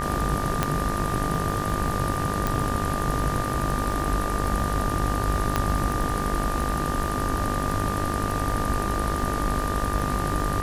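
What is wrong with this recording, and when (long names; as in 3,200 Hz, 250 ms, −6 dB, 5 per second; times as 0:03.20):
mains buzz 50 Hz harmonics 38 −30 dBFS
surface crackle 53 per second −31 dBFS
whistle 1,200 Hz −30 dBFS
0:00.63: click −7 dBFS
0:02.47: click
0:05.56: click −8 dBFS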